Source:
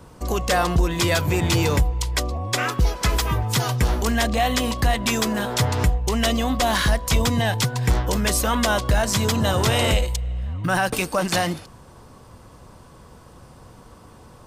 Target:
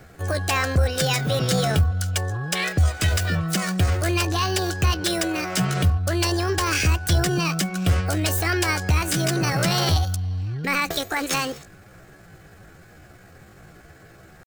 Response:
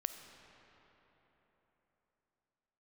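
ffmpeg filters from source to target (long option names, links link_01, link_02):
-af "equalizer=frequency=160:width_type=o:width=0.33:gain=-11,equalizer=frequency=630:width_type=o:width=0.33:gain=-11,equalizer=frequency=8000:width_type=o:width=0.33:gain=-8,asetrate=66075,aresample=44100,atempo=0.66742"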